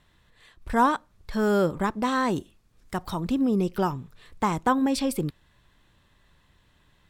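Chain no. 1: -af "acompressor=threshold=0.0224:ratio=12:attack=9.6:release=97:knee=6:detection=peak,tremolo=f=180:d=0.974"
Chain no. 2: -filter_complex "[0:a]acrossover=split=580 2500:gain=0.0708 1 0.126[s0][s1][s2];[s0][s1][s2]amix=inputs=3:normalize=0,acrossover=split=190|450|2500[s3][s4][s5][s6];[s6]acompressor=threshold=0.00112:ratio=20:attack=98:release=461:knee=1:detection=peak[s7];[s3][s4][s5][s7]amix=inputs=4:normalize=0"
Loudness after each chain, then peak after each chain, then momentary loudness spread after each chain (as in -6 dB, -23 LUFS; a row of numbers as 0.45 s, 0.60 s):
-42.0 LUFS, -31.5 LUFS; -23.5 dBFS, -12.0 dBFS; 8 LU, 17 LU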